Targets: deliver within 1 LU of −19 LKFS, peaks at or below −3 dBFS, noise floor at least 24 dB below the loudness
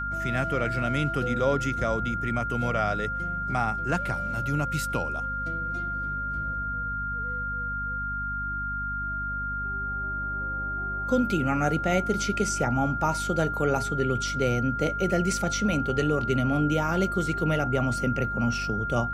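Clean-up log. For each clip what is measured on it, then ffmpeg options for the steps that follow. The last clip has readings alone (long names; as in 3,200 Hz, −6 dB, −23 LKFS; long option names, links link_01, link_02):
mains hum 50 Hz; hum harmonics up to 250 Hz; level of the hum −34 dBFS; interfering tone 1,400 Hz; level of the tone −29 dBFS; integrated loudness −27.0 LKFS; sample peak −11.0 dBFS; target loudness −19.0 LKFS
→ -af "bandreject=frequency=50:width_type=h:width=4,bandreject=frequency=100:width_type=h:width=4,bandreject=frequency=150:width_type=h:width=4,bandreject=frequency=200:width_type=h:width=4,bandreject=frequency=250:width_type=h:width=4"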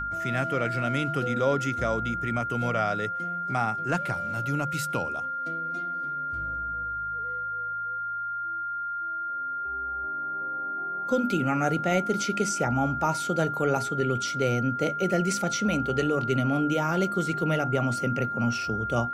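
mains hum none found; interfering tone 1,400 Hz; level of the tone −29 dBFS
→ -af "bandreject=frequency=1400:width=30"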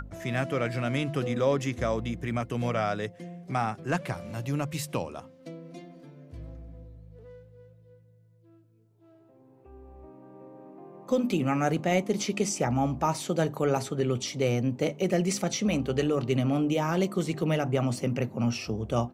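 interfering tone none found; integrated loudness −28.5 LKFS; sample peak −11.5 dBFS; target loudness −19.0 LKFS
→ -af "volume=9.5dB,alimiter=limit=-3dB:level=0:latency=1"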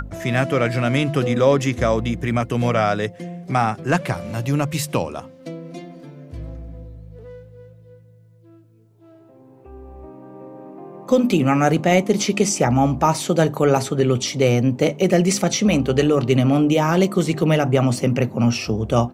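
integrated loudness −19.0 LKFS; sample peak −3.0 dBFS; background noise floor −49 dBFS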